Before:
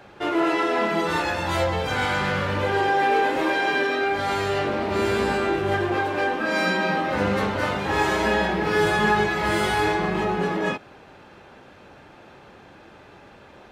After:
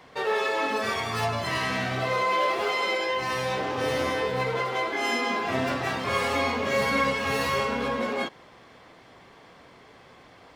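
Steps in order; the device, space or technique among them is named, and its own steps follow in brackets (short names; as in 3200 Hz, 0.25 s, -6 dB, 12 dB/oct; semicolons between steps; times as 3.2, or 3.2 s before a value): nightcore (varispeed +30%); gain -4 dB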